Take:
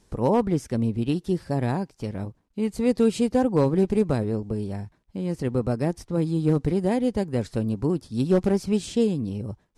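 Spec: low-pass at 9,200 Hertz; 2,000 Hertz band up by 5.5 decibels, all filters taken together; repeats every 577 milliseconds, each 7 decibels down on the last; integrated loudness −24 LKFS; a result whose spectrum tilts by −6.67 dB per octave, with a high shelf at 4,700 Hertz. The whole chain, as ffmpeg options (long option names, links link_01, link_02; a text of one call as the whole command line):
ffmpeg -i in.wav -af "lowpass=9200,equalizer=frequency=2000:width_type=o:gain=8,highshelf=frequency=4700:gain=-6.5,aecho=1:1:577|1154|1731|2308|2885:0.447|0.201|0.0905|0.0407|0.0183" out.wav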